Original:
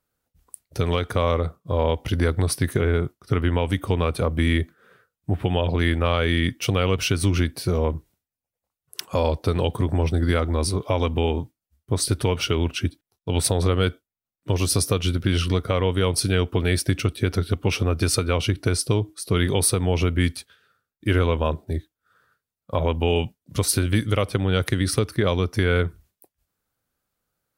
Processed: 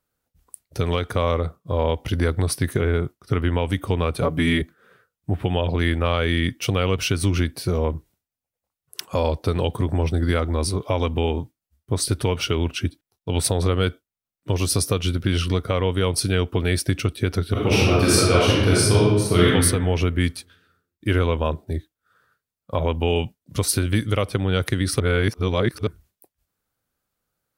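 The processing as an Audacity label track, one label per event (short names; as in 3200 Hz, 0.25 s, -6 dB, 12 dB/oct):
4.220000	4.620000	comb 7 ms, depth 99%
17.510000	19.450000	reverb throw, RT60 1.3 s, DRR -6.5 dB
25.000000	25.870000	reverse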